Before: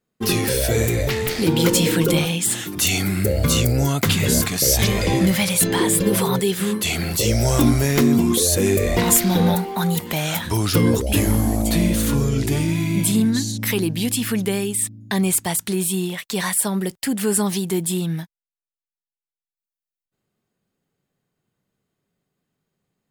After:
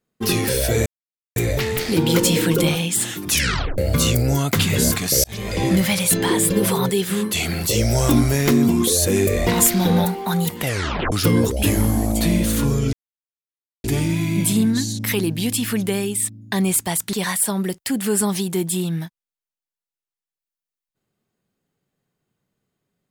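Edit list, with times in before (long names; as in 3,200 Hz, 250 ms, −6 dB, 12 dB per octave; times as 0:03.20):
0:00.86: splice in silence 0.50 s
0:02.80: tape stop 0.48 s
0:04.74–0:05.21: fade in
0:10.09: tape stop 0.53 s
0:12.43: splice in silence 0.91 s
0:15.72–0:16.30: remove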